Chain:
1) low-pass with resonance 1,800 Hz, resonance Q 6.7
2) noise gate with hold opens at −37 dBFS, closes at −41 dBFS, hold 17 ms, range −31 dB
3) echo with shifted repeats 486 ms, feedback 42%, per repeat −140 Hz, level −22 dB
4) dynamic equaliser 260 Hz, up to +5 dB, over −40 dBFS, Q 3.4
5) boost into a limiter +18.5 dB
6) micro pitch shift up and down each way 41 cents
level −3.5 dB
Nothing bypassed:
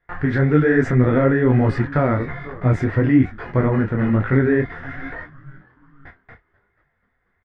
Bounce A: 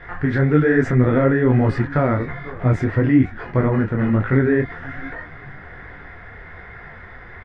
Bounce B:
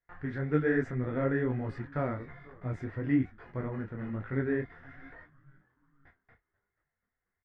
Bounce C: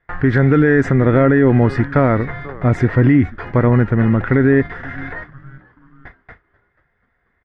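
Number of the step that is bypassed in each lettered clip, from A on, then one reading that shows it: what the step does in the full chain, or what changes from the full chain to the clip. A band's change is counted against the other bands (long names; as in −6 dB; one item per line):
2, change in momentary loudness spread +9 LU
5, change in crest factor +4.0 dB
6, change in crest factor −4.5 dB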